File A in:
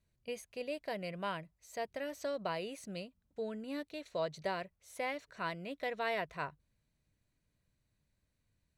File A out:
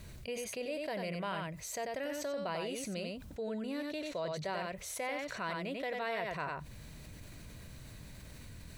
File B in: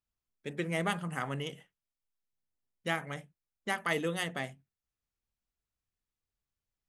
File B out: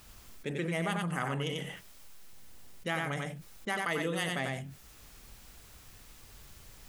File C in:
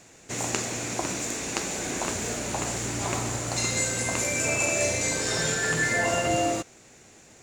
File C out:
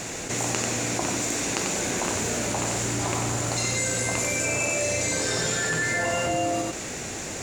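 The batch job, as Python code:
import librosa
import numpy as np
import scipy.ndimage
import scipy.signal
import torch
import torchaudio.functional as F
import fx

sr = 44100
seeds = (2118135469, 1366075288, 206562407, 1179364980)

p1 = x + fx.echo_single(x, sr, ms=92, db=-6.5, dry=0)
p2 = fx.env_flatten(p1, sr, amount_pct=70)
y = p2 * 10.0 ** (-3.5 / 20.0)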